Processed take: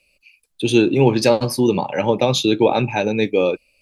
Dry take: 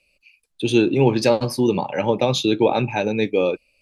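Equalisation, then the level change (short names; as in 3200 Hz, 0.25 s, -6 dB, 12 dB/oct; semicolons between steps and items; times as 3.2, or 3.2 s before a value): high shelf 8600 Hz +6 dB; +2.0 dB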